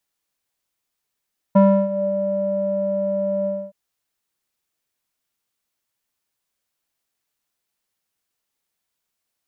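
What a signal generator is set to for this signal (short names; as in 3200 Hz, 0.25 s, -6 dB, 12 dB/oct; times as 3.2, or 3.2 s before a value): synth note square G3 12 dB/oct, low-pass 570 Hz, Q 8.2, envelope 0.5 oct, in 0.55 s, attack 12 ms, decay 0.32 s, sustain -17 dB, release 0.26 s, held 1.91 s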